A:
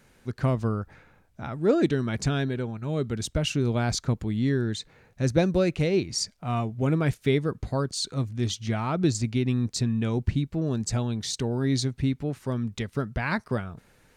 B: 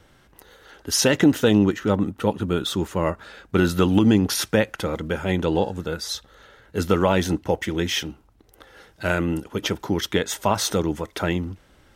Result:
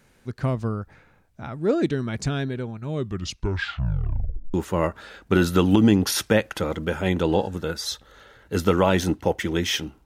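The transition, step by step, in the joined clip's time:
A
2.92 tape stop 1.62 s
4.54 switch to B from 2.77 s

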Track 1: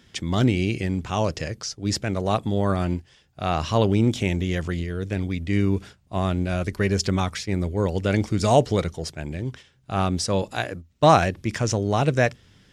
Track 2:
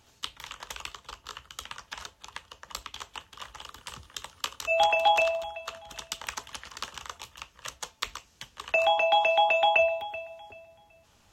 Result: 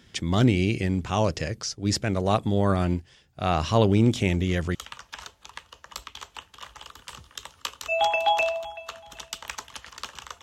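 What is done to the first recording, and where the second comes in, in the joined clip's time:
track 1
3.93 add track 2 from 0.72 s 0.82 s -14.5 dB
4.75 switch to track 2 from 1.54 s

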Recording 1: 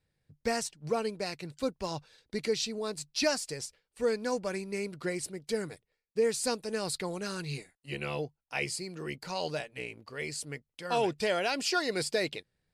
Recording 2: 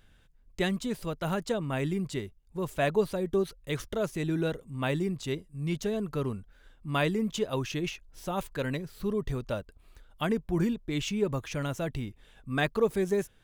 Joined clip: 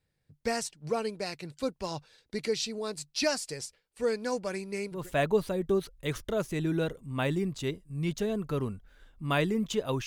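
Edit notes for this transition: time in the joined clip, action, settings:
recording 1
4.97 switch to recording 2 from 2.61 s, crossfade 0.28 s

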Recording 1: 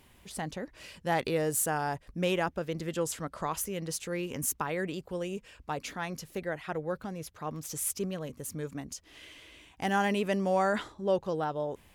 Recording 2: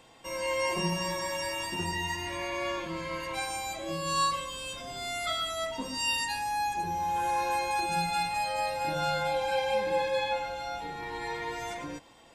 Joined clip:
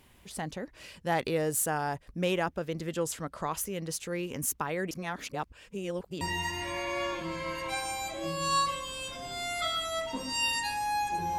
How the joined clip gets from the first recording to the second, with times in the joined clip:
recording 1
4.91–6.21 reverse
6.21 switch to recording 2 from 1.86 s

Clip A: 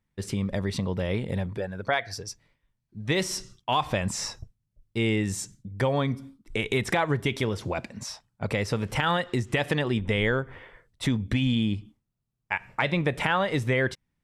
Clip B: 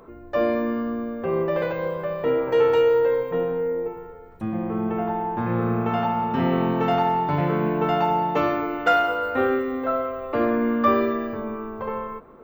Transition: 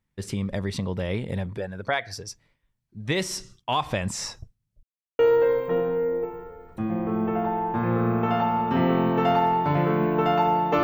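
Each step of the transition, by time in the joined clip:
clip A
4.83–5.19 mute
5.19 switch to clip B from 2.82 s

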